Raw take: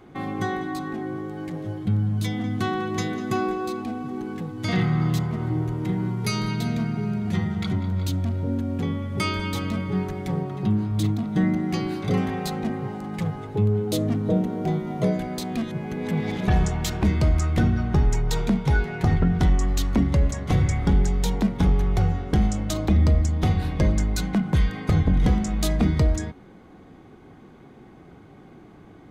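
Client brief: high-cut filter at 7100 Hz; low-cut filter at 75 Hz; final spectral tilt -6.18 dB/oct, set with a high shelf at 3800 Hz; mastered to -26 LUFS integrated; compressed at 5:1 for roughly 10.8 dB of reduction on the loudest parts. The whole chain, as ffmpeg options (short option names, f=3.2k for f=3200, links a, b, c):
-af "highpass=75,lowpass=7.1k,highshelf=f=3.8k:g=3,acompressor=threshold=-29dB:ratio=5,volume=7dB"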